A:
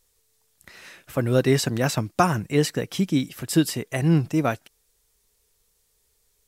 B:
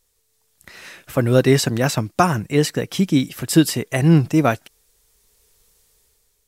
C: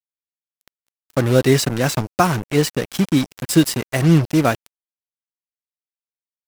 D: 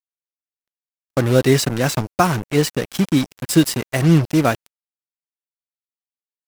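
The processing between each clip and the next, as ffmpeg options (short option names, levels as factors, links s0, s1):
-af "dynaudnorm=f=260:g=5:m=2.82"
-af "acrusher=bits=3:mix=0:aa=0.5"
-af "agate=range=0.0224:threshold=0.0316:ratio=3:detection=peak"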